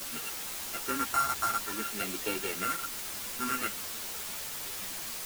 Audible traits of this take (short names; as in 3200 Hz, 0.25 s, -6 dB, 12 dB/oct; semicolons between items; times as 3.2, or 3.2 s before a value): a buzz of ramps at a fixed pitch in blocks of 32 samples; phasing stages 4, 0.56 Hz, lowest notch 510–1100 Hz; a quantiser's noise floor 6-bit, dither triangular; a shimmering, thickened sound